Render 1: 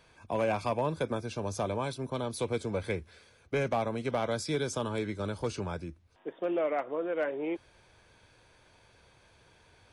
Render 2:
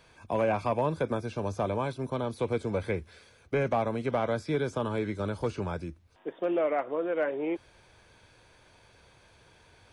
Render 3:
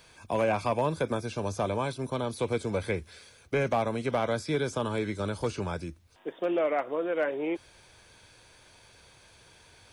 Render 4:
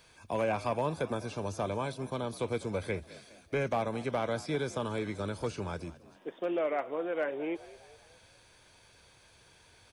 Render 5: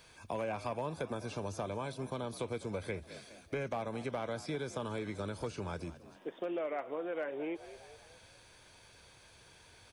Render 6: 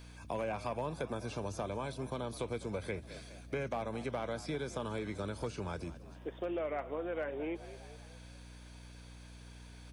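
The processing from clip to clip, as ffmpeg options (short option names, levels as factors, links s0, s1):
-filter_complex "[0:a]acrossover=split=2600[s0][s1];[s1]acompressor=threshold=0.002:ratio=4:attack=1:release=60[s2];[s0][s2]amix=inputs=2:normalize=0,volume=1.33"
-af "highshelf=f=3400:g=10"
-filter_complex "[0:a]asplit=5[s0][s1][s2][s3][s4];[s1]adelay=206,afreqshift=55,volume=0.119[s5];[s2]adelay=412,afreqshift=110,volume=0.061[s6];[s3]adelay=618,afreqshift=165,volume=0.0309[s7];[s4]adelay=824,afreqshift=220,volume=0.0158[s8];[s0][s5][s6][s7][s8]amix=inputs=5:normalize=0,volume=0.631"
-af "acompressor=threshold=0.0126:ratio=2.5,volume=1.12"
-af "aeval=exprs='val(0)+0.00282*(sin(2*PI*60*n/s)+sin(2*PI*2*60*n/s)/2+sin(2*PI*3*60*n/s)/3+sin(2*PI*4*60*n/s)/4+sin(2*PI*5*60*n/s)/5)':c=same"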